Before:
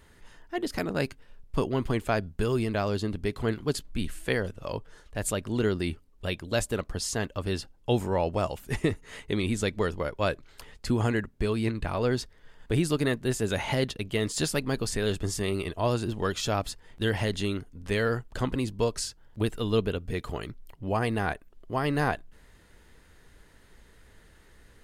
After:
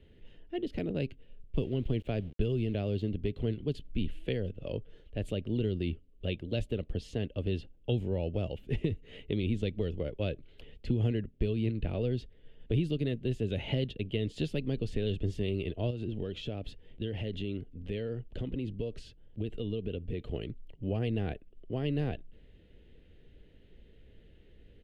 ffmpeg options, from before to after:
ffmpeg -i in.wav -filter_complex "[0:a]asettb=1/sr,asplit=3[link_01][link_02][link_03];[link_01]atrim=end=1.564[link_04];[link_02]atrim=start=1.56:end=3.09,asetpts=PTS-STARTPTS,afade=type=in:duration=0.004:curve=qsin,afade=type=out:start_time=1.526:duration=0.004:curve=qsin,aeval=exprs='val(0)*gte(abs(val(0)),0.00708)':channel_layout=same[link_05];[link_03]atrim=start=3.086[link_06];[link_04][link_05]acrossfade=duration=0.004:curve1=hsin:curve2=qsin[link_07];[link_07][link_06]acrossfade=duration=0.004:curve1=qsin:curve2=hsin,asettb=1/sr,asplit=3[link_08][link_09][link_10];[link_08]atrim=end=15.904[link_11];[link_09]atrim=start=15.9:end=20.32,asetpts=PTS-STARTPTS,afade=type=in:duration=0.004:curve=qsin,afade=type=out:start_time=4.416:duration=0.004:curve=qsin,acompressor=threshold=-30dB:ratio=5:attack=3.2:release=140:knee=1:detection=peak[link_12];[link_10]atrim=start=20.316[link_13];[link_11][link_12]acrossfade=duration=0.004:curve1=hsin:curve2=qsin[link_14];[link_14][link_13]acrossfade=duration=0.004:curve1=qsin:curve2=hsin,firequalizer=gain_entry='entry(490,0);entry(1000,-22);entry(2900,-1);entry(5000,-21);entry(8000,-28)':delay=0.05:min_phase=1,acrossover=split=160|3000[link_15][link_16][link_17];[link_16]acompressor=threshold=-31dB:ratio=6[link_18];[link_15][link_18][link_17]amix=inputs=3:normalize=0" out.wav

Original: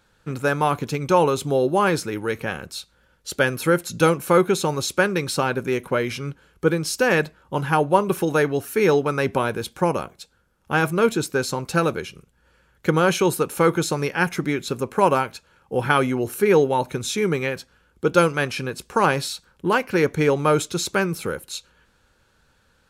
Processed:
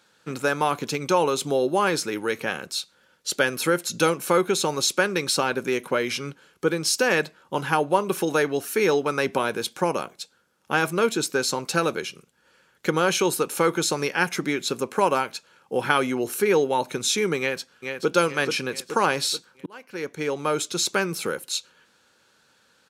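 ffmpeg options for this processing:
ffmpeg -i in.wav -filter_complex "[0:a]asplit=2[link_01][link_02];[link_02]afade=type=in:start_time=17.39:duration=0.01,afade=type=out:start_time=18.13:duration=0.01,aecho=0:1:430|860|1290|1720|2150|2580:0.446684|0.223342|0.111671|0.0558354|0.0279177|0.0139589[link_03];[link_01][link_03]amix=inputs=2:normalize=0,asplit=2[link_04][link_05];[link_04]atrim=end=19.66,asetpts=PTS-STARTPTS,afade=type=out:start_time=19.656:duration=0.004:curve=hsin[link_06];[link_05]atrim=start=19.66,asetpts=PTS-STARTPTS,afade=type=in:duration=1.43[link_07];[link_06][link_07]concat=n=2:v=0:a=1,acompressor=threshold=-22dB:ratio=1.5,highpass=200,equalizer=frequency=5300:width_type=o:width=2.1:gain=5.5" out.wav

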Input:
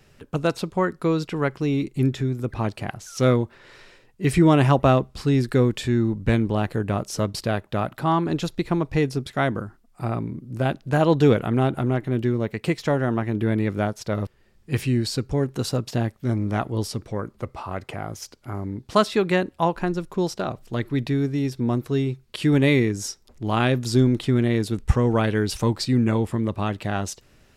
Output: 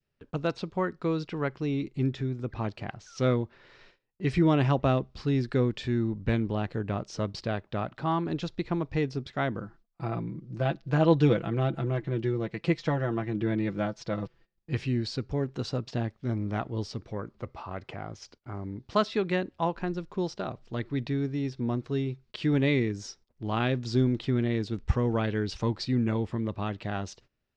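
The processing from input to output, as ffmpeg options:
ffmpeg -i in.wav -filter_complex "[0:a]asettb=1/sr,asplit=3[link_01][link_02][link_03];[link_01]atrim=end=9.624[link_04];[link_02]atrim=start=9.62:end=14.74,asetpts=PTS-STARTPTS,afade=type=in:duration=0.004:curve=qsin,afade=type=out:start_time=5.116:duration=0.004:curve=qsin,aecho=1:1:6:0.66,atrim=end_sample=225792[link_05];[link_03]atrim=start=14.736[link_06];[link_04][link_05]acrossfade=duration=0.004:curve1=hsin:curve2=qsin[link_07];[link_07][link_06]acrossfade=duration=0.004:curve1=qsin:curve2=hsin,lowpass=frequency=5600:width=0.5412,lowpass=frequency=5600:width=1.3066,agate=range=-20dB:threshold=-48dB:ratio=16:detection=peak,adynamicequalizer=threshold=0.0282:dfrequency=1000:dqfactor=0.85:tfrequency=1000:tqfactor=0.85:attack=5:release=100:ratio=0.375:range=2:mode=cutabove:tftype=bell,volume=-6.5dB" out.wav

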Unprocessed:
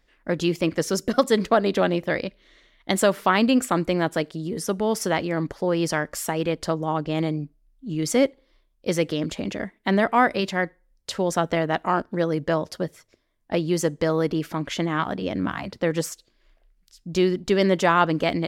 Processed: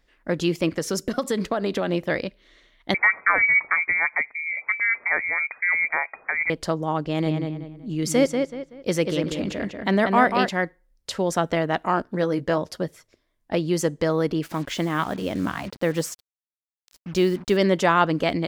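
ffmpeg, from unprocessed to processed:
ffmpeg -i in.wav -filter_complex "[0:a]asettb=1/sr,asplit=3[link_01][link_02][link_03];[link_01]atrim=end=0.704[link_04];[link_02]atrim=start=0.7:end=1.92,asetpts=PTS-STARTPTS,afade=type=in:duration=0.004:curve=qsin,afade=type=out:start_time=1.216:duration=0.004:curve=qsin,acompressor=threshold=-19dB:ratio=6:attack=3.2:release=140:knee=1:detection=peak[link_05];[link_03]atrim=start=1.916[link_06];[link_04][link_05]acrossfade=duration=0.004:curve1=hsin:curve2=qsin[link_07];[link_07][link_06]acrossfade=duration=0.004:curve1=qsin:curve2=hsin,asettb=1/sr,asplit=3[link_08][link_09][link_10];[link_08]atrim=end=2.944[link_11];[link_09]atrim=start=2.94:end=6.5,asetpts=PTS-STARTPTS,afade=type=in:duration=0.004:curve=qsin,afade=type=out:start_time=3.556:duration=0.004:curve=qsin,lowpass=frequency=2100:width_type=q:width=0.5098,lowpass=frequency=2100:width_type=q:width=0.6013,lowpass=frequency=2100:width_type=q:width=0.9,lowpass=frequency=2100:width_type=q:width=2.563,afreqshift=-2500[link_12];[link_10]atrim=start=6.496[link_13];[link_11][link_12]acrossfade=duration=0.004:curve1=hsin:curve2=qsin[link_14];[link_14][link_13]acrossfade=duration=0.004:curve1=qsin:curve2=hsin,asettb=1/sr,asplit=3[link_15][link_16][link_17];[link_15]atrim=end=7.064[link_18];[link_16]atrim=start=7.06:end=10.49,asetpts=PTS-STARTPTS,afade=type=in:duration=0.004:curve=qsin,afade=type=out:start_time=3.426:duration=0.004:curve=qsin,asplit=2[link_19][link_20];[link_20]adelay=189,lowpass=frequency=4000:poles=1,volume=-5dB,asplit=2[link_21][link_22];[link_22]adelay=189,lowpass=frequency=4000:poles=1,volume=0.33,asplit=2[link_23][link_24];[link_24]adelay=189,lowpass=frequency=4000:poles=1,volume=0.33,asplit=2[link_25][link_26];[link_26]adelay=189,lowpass=frequency=4000:poles=1,volume=0.33[link_27];[link_19][link_21][link_23][link_25][link_27]amix=inputs=5:normalize=0,atrim=end_sample=151263[link_28];[link_17]atrim=start=10.486[link_29];[link_18][link_28]acrossfade=duration=0.004:curve1=hsin:curve2=qsin[link_30];[link_30][link_29]acrossfade=duration=0.004:curve1=qsin:curve2=hsin,asettb=1/sr,asplit=3[link_31][link_32][link_33];[link_31]atrim=end=12.034[link_34];[link_32]atrim=start=12.03:end=12.58,asetpts=PTS-STARTPTS,afade=type=in:duration=0.004:curve=qsin,afade=type=out:start_time=0.546:duration=0.004:curve=qsin,asplit=2[link_35][link_36];[link_36]adelay=16,volume=-9dB[link_37];[link_35][link_37]amix=inputs=2:normalize=0,atrim=end_sample=24255[link_38];[link_33]atrim=start=12.576[link_39];[link_34][link_38]acrossfade=duration=0.004:curve1=hsin:curve2=qsin[link_40];[link_40][link_39]acrossfade=duration=0.004:curve1=qsin:curve2=hsin,asettb=1/sr,asplit=3[link_41][link_42][link_43];[link_41]atrim=end=14.434[link_44];[link_42]atrim=start=14.43:end=17.57,asetpts=PTS-STARTPTS,afade=type=in:duration=0.004:curve=qsin,afade=type=out:start_time=3.136:duration=0.004:curve=qsin,acrusher=bits=6:mix=0:aa=0.5[link_45];[link_43]atrim=start=17.566[link_46];[link_44][link_45]acrossfade=duration=0.004:curve1=hsin:curve2=qsin[link_47];[link_47][link_46]acrossfade=duration=0.004:curve1=qsin:curve2=hsin" out.wav

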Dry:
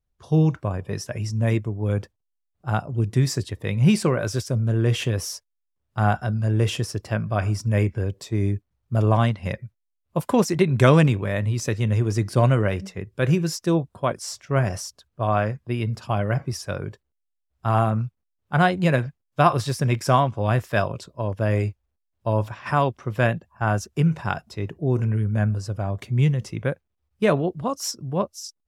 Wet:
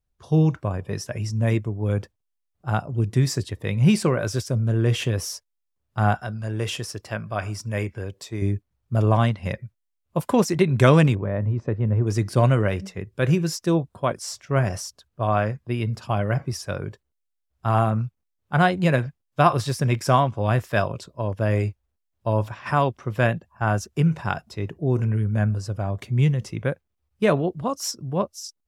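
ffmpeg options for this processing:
ffmpeg -i in.wav -filter_complex "[0:a]asettb=1/sr,asplit=3[link_01][link_02][link_03];[link_01]atrim=end=6.144[link_04];[link_02]atrim=start=6.14:end=8.42,asetpts=PTS-STARTPTS,afade=type=in:duration=0.004:curve=qsin,afade=type=out:start_time=2.276:duration=0.004:curve=qsin,lowshelf=frequency=430:gain=-8[link_05];[link_03]atrim=start=8.416[link_06];[link_04][link_05]acrossfade=duration=0.004:curve1=hsin:curve2=qsin[link_07];[link_07][link_06]acrossfade=duration=0.004:curve1=qsin:curve2=hsin,asplit=3[link_08][link_09][link_10];[link_08]afade=type=out:start_time=11.14:duration=0.02[link_11];[link_09]lowpass=1100,afade=type=in:start_time=11.14:duration=0.02,afade=type=out:start_time=12.06:duration=0.02[link_12];[link_10]afade=type=in:start_time=12.06:duration=0.02[link_13];[link_11][link_12][link_13]amix=inputs=3:normalize=0" out.wav

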